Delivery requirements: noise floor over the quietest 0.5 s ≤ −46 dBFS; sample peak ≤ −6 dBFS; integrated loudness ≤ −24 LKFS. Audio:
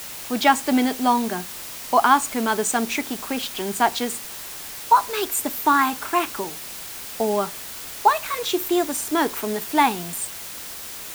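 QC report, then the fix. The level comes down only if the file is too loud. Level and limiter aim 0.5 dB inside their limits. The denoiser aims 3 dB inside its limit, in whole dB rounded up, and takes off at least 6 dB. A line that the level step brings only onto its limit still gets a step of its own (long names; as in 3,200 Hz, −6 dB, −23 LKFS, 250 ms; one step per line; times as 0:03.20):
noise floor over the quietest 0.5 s −35 dBFS: out of spec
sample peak −4.0 dBFS: out of spec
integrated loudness −22.5 LKFS: out of spec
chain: broadband denoise 12 dB, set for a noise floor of −35 dBFS
level −2 dB
brickwall limiter −6.5 dBFS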